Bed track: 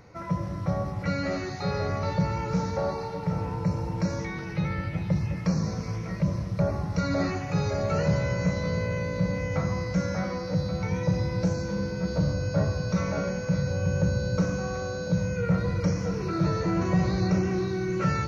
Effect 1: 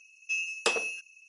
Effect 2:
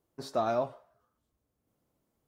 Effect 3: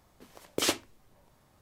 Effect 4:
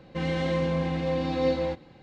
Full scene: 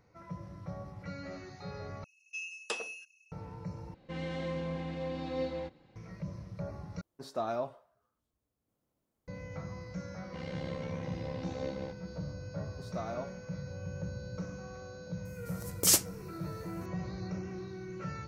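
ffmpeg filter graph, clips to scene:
-filter_complex "[4:a]asplit=2[a][b];[2:a]asplit=2[c][d];[0:a]volume=-14.5dB[e];[b]tremolo=f=67:d=0.824[f];[3:a]aexciter=amount=5.8:drive=4.5:freq=4.9k[g];[e]asplit=4[h][i][j][k];[h]atrim=end=2.044[l];[1:a]atrim=end=1.28,asetpts=PTS-STARTPTS,volume=-9.5dB[m];[i]atrim=start=3.316:end=3.944[n];[a]atrim=end=2.02,asetpts=PTS-STARTPTS,volume=-10dB[o];[j]atrim=start=5.956:end=7.014[p];[c]atrim=end=2.27,asetpts=PTS-STARTPTS,volume=-5dB[q];[k]atrim=start=9.276[r];[f]atrim=end=2.02,asetpts=PTS-STARTPTS,volume=-10dB,afade=t=in:d=0.004:c=hsin,afade=t=out:st=2.016:d=0.004:c=hsin,adelay=448938S[s];[d]atrim=end=2.27,asetpts=PTS-STARTPTS,volume=-10.5dB,afade=t=in:d=0.004:c=hsin,afade=t=out:st=2.266:d=0.004:c=hsin,adelay=12600[t];[g]atrim=end=1.61,asetpts=PTS-STARTPTS,volume=-5.5dB,afade=t=in:d=0.004:c=hsin,afade=t=out:st=1.606:d=0.004:c=hsin,adelay=15250[u];[l][m]acrossfade=d=0.004:c1=hsin:c2=hsin[v];[v][n]acrossfade=d=0.004:c1=hsin:c2=hsin[w];[w][o]acrossfade=d=0.004:c1=hsin:c2=hsin[x];[x][p]acrossfade=d=0.004:c1=hsin:c2=hsin[y];[y][q]acrossfade=d=0.004:c1=hsin:c2=hsin[z];[z][r]acrossfade=d=0.004:c1=hsin:c2=hsin[aa];[aa][s][t][u]amix=inputs=4:normalize=0"

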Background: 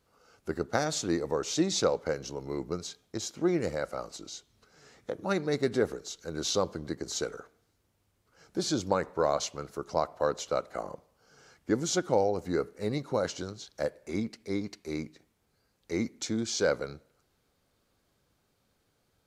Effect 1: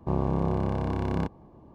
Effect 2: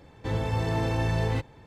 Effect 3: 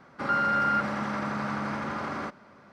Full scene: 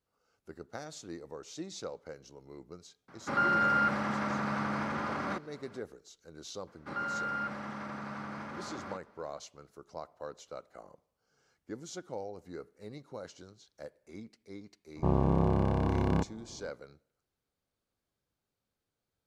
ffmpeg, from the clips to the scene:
-filter_complex "[3:a]asplit=2[a][b];[0:a]volume=-14.5dB[c];[a]atrim=end=2.72,asetpts=PTS-STARTPTS,volume=-2dB,afade=t=in:d=0.004:c=hsin,afade=t=out:st=2.716:d=0.004:c=hsin,adelay=3080[d];[b]atrim=end=2.72,asetpts=PTS-STARTPTS,volume=-10dB,afade=t=in:d=0.004:c=hsin,afade=t=out:st=2.716:d=0.004:c=hsin,adelay=6670[e];[1:a]atrim=end=1.74,asetpts=PTS-STARTPTS,volume=-0.5dB,afade=t=in:d=0.004:c=hsin,afade=t=out:st=1.736:d=0.004:c=hsin,adelay=14960[f];[c][d][e][f]amix=inputs=4:normalize=0"

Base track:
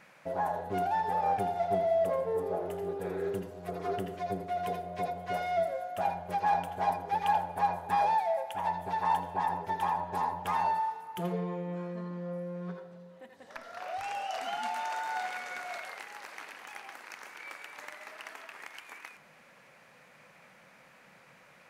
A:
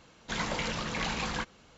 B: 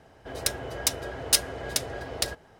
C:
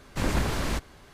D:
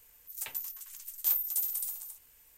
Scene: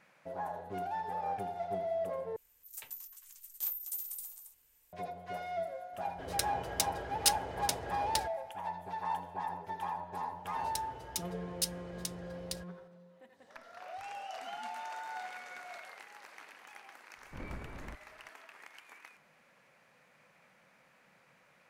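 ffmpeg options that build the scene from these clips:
-filter_complex "[2:a]asplit=2[a][b];[0:a]volume=-7.5dB[c];[b]acrossover=split=340|3000[d][e][f];[e]acompressor=threshold=-38dB:ratio=6:attack=3.2:release=140:knee=2.83:detection=peak[g];[d][g][f]amix=inputs=3:normalize=0[h];[3:a]lowpass=1.5k[i];[c]asplit=2[j][k];[j]atrim=end=2.364[l];[4:a]atrim=end=2.57,asetpts=PTS-STARTPTS,volume=-8dB[m];[k]atrim=start=4.926[n];[a]atrim=end=2.59,asetpts=PTS-STARTPTS,volume=-6.5dB,afade=t=in:d=0.004:c=hsin,afade=t=out:st=2.586:d=0.004:c=hsin,adelay=261513S[o];[h]atrim=end=2.59,asetpts=PTS-STARTPTS,volume=-12dB,afade=t=in:d=0.004:c=hsin,afade=t=out:st=2.586:d=0.004:c=hsin,adelay=10290[p];[i]atrim=end=1.13,asetpts=PTS-STARTPTS,volume=-17.5dB,afade=t=in:d=0.004:c=hsin,afade=t=out:st=1.126:d=0.004:c=hsin,adelay=756756S[q];[l][m]acrossfade=d=0.004:c1=hsin:c2=hsin[r];[r][n]acrossfade=d=0.004:c1=hsin:c2=hsin[s];[s][o][p][q]amix=inputs=4:normalize=0"

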